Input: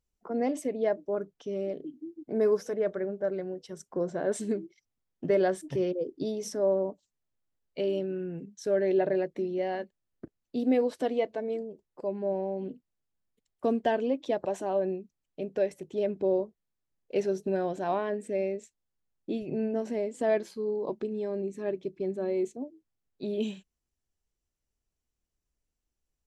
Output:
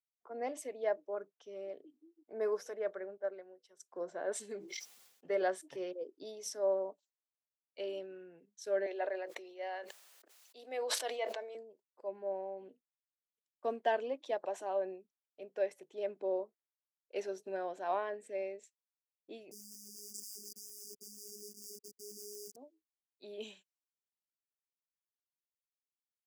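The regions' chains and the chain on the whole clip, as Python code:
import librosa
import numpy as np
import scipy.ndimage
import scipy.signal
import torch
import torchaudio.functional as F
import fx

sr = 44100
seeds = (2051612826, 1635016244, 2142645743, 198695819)

y = fx.chain(x, sr, fx.highpass(hz=190.0, slope=12),
    fx.upward_expand(threshold_db=-39.0, expansion=1.5), at=(3.17, 3.8))
y = fx.chain(y, sr, fx.notch_comb(f0_hz=320.0),
    fx.sustainer(db_per_s=52.0), at=(4.39, 5.42))
y = fx.chain(y, sr, fx.highpass(hz=520.0, slope=12),
    fx.sustainer(db_per_s=30.0), at=(8.86, 11.55))
y = fx.chain(y, sr, fx.schmitt(flips_db=-45.0),
    fx.brickwall_bandstop(low_hz=400.0, high_hz=4700.0),
    fx.robotise(hz=207.0), at=(19.51, 22.56))
y = scipy.signal.sosfilt(scipy.signal.butter(2, 570.0, 'highpass', fs=sr, output='sos'), y)
y = fx.band_widen(y, sr, depth_pct=40)
y = F.gain(torch.from_numpy(y), -4.5).numpy()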